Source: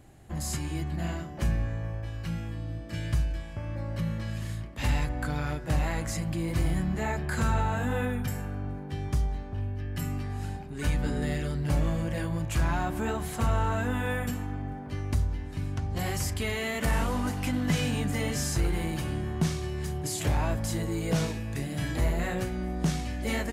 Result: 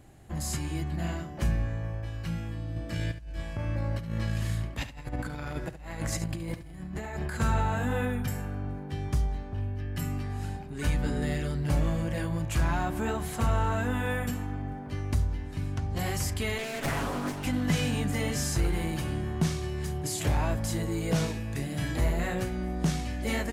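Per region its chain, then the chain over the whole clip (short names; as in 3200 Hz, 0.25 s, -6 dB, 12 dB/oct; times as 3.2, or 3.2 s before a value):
2.76–7.4 negative-ratio compressor -33 dBFS, ratio -0.5 + echo 71 ms -12 dB
16.58–17.45 minimum comb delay 7.2 ms + bell 67 Hz -4.5 dB 1.8 oct + Doppler distortion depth 0.49 ms
whole clip: dry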